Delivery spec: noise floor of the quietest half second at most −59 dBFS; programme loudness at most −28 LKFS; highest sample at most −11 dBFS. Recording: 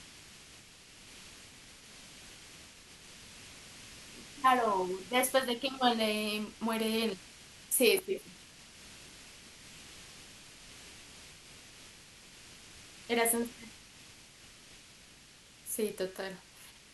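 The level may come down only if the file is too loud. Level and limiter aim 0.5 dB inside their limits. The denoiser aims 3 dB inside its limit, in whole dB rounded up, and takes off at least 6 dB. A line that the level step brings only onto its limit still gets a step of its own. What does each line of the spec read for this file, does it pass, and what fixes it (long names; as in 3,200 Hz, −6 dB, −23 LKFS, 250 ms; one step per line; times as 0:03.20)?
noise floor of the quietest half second −57 dBFS: out of spec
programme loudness −31.5 LKFS: in spec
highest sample −12.0 dBFS: in spec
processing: broadband denoise 6 dB, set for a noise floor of −57 dBFS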